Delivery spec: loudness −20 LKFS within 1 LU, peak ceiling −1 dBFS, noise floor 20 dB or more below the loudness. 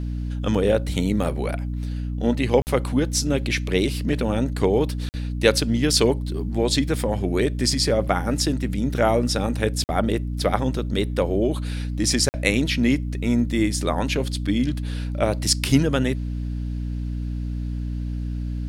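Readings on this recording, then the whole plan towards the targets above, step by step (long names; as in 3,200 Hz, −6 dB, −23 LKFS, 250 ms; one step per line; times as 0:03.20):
number of dropouts 4; longest dropout 49 ms; mains hum 60 Hz; hum harmonics up to 300 Hz; level of the hum −25 dBFS; integrated loudness −23.0 LKFS; sample peak −3.0 dBFS; target loudness −20.0 LKFS
→ repair the gap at 0:02.62/0:05.09/0:09.84/0:12.29, 49 ms
mains-hum notches 60/120/180/240/300 Hz
level +3 dB
brickwall limiter −1 dBFS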